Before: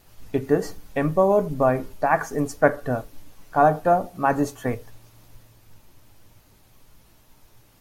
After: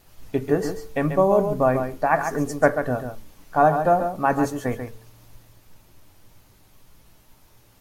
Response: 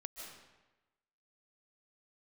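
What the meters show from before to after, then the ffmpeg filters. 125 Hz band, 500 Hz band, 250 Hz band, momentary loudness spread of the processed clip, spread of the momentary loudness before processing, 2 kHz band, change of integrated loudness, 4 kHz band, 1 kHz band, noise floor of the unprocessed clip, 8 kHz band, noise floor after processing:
+0.5 dB, +0.5 dB, +0.5 dB, 11 LU, 11 LU, +0.5 dB, +0.5 dB, no reading, +0.5 dB, -56 dBFS, +0.5 dB, -56 dBFS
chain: -filter_complex "[0:a]bandreject=f=111.4:t=h:w=4,bandreject=f=222.8:t=h:w=4,bandreject=f=334.2:t=h:w=4,bandreject=f=445.6:t=h:w=4,asplit=2[s0][s1];[1:a]atrim=start_sample=2205,atrim=end_sample=3528,adelay=139[s2];[s1][s2]afir=irnorm=-1:irlink=0,volume=0.75[s3];[s0][s3]amix=inputs=2:normalize=0"

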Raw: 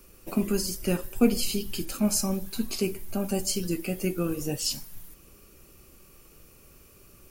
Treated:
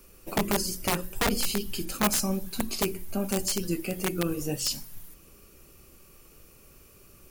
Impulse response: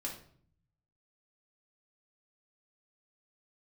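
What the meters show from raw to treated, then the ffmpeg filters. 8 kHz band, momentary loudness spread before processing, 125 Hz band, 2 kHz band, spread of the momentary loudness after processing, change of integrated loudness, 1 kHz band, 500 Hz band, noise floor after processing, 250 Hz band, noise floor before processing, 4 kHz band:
+0.5 dB, 8 LU, -1.0 dB, +6.0 dB, 7 LU, -0.5 dB, +7.5 dB, -1.5 dB, -55 dBFS, -3.5 dB, -55 dBFS, +1.5 dB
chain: -af "aeval=exprs='(mod(7.5*val(0)+1,2)-1)/7.5':c=same,bandreject=f=45.2:t=h:w=4,bandreject=f=90.4:t=h:w=4,bandreject=f=135.6:t=h:w=4,bandreject=f=180.8:t=h:w=4,bandreject=f=226:t=h:w=4,bandreject=f=271.2:t=h:w=4,bandreject=f=316.4:t=h:w=4,bandreject=f=361.6:t=h:w=4"

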